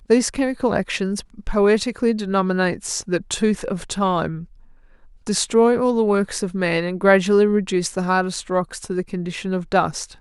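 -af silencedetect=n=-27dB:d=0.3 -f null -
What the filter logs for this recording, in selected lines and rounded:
silence_start: 4.42
silence_end: 5.27 | silence_duration: 0.85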